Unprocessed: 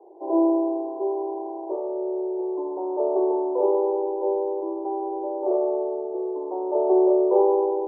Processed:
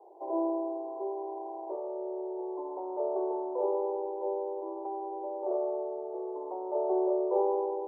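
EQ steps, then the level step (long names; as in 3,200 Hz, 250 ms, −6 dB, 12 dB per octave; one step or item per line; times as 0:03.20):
high-pass filter 610 Hz 12 dB per octave
dynamic equaliser 970 Hz, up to −6 dB, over −39 dBFS, Q 0.76
0.0 dB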